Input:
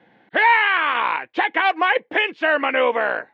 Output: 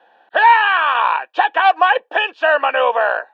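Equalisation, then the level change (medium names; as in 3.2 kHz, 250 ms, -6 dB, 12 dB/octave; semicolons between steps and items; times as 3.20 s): resonant high-pass 690 Hz, resonance Q 1.7; Butterworth band-stop 2.1 kHz, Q 4.1; +2.5 dB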